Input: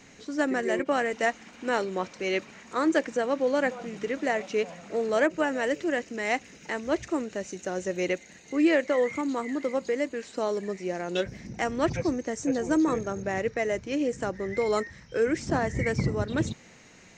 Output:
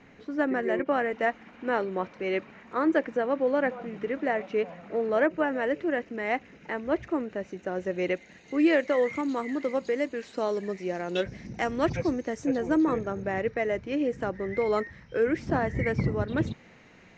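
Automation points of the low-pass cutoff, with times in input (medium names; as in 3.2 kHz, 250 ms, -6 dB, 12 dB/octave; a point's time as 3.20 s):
7.66 s 2.2 kHz
8.80 s 4.9 kHz
12.12 s 4.9 kHz
12.78 s 3 kHz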